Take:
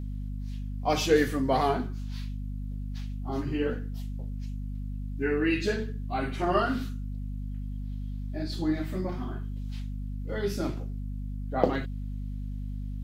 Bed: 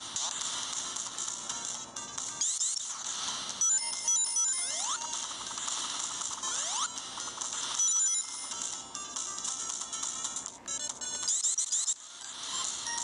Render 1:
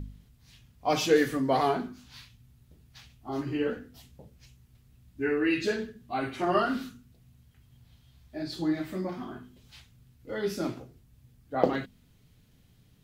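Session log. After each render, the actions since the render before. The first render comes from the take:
hum removal 50 Hz, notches 5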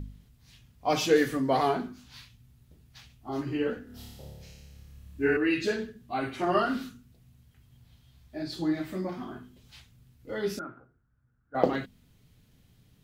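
0:03.84–0:05.37: flutter between parallel walls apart 4.9 metres, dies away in 1.3 s
0:10.59–0:11.55: transistor ladder low-pass 1,500 Hz, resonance 85%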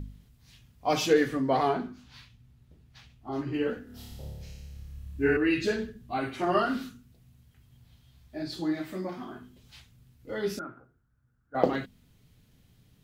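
0:01.13–0:03.54: high-shelf EQ 6,100 Hz −11 dB
0:04.11–0:06.18: low-shelf EQ 95 Hz +11 dB
0:08.60–0:09.42: low-shelf EQ 140 Hz −8 dB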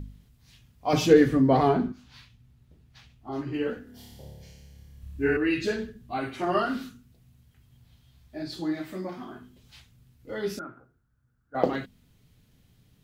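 0:00.93–0:01.92: low-shelf EQ 390 Hz +12 dB
0:03.90–0:05.02: notch comb filter 1,300 Hz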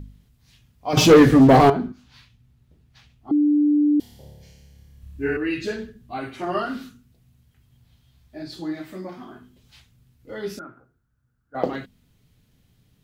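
0:00.97–0:01.70: leveller curve on the samples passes 3
0:03.31–0:04.00: beep over 295 Hz −14.5 dBFS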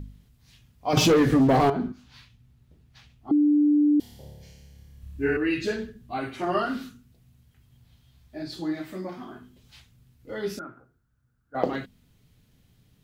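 downward compressor 6 to 1, threshold −17 dBFS, peak gain reduction 9 dB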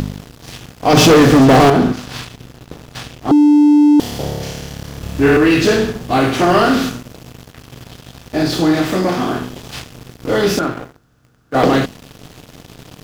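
compressor on every frequency bin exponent 0.6
leveller curve on the samples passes 3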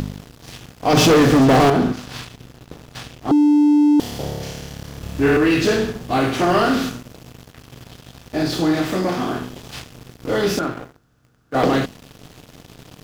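level −4.5 dB

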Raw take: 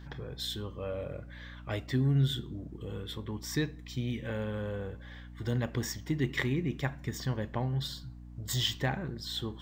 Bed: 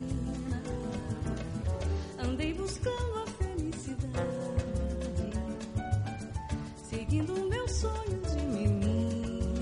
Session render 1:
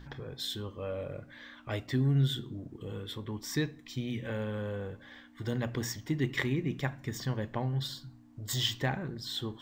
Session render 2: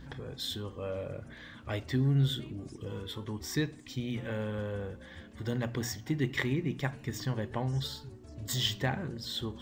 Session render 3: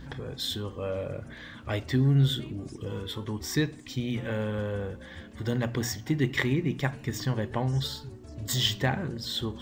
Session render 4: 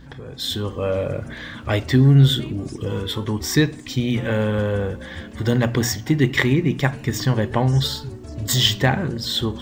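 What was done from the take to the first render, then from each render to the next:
hum removal 60 Hz, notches 3
mix in bed −18 dB
level +4.5 dB
automatic gain control gain up to 10 dB

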